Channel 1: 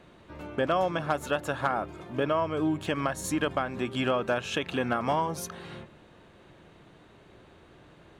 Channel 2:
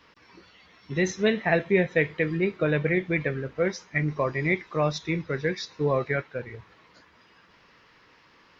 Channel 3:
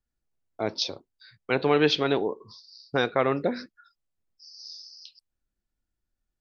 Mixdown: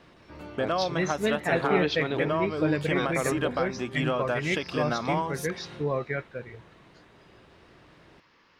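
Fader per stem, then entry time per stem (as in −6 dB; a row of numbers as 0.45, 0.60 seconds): −1.5, −4.0, −6.5 decibels; 0.00, 0.00, 0.00 seconds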